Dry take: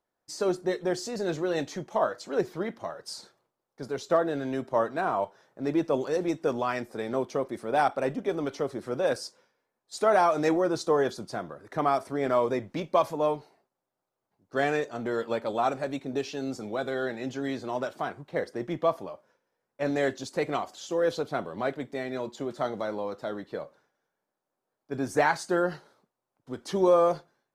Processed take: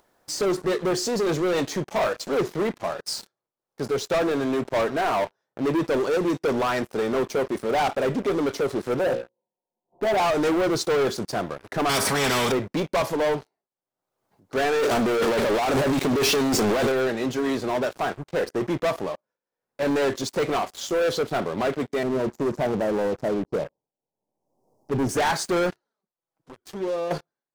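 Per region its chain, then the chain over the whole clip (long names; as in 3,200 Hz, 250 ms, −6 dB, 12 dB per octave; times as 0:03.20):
0:08.99–0:10.20: Chebyshev low-pass with heavy ripple 1,000 Hz, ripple 3 dB + mains-hum notches 60/120/180/240/300/360/420/480/540 Hz + comb filter 5.6 ms, depth 50%
0:11.89–0:12.52: parametric band 210 Hz +9 dB 1.5 octaves + notch comb filter 350 Hz + every bin compressed towards the loudest bin 4 to 1
0:14.79–0:16.92: high-pass filter 52 Hz + leveller curve on the samples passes 5 + compressor whose output falls as the input rises −23 dBFS, ratio −0.5
0:22.03–0:25.09: elliptic band-stop filter 920–5,300 Hz + spectral tilt −2 dB per octave
0:25.70–0:27.11: downward compressor 1.5 to 1, threshold −60 dBFS + flanger swept by the level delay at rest 6.4 ms, full sweep at −34.5 dBFS
whole clip: dynamic equaliser 420 Hz, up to +4 dB, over −44 dBFS, Q 5.1; leveller curve on the samples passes 5; upward compression, threshold −29 dBFS; level −8.5 dB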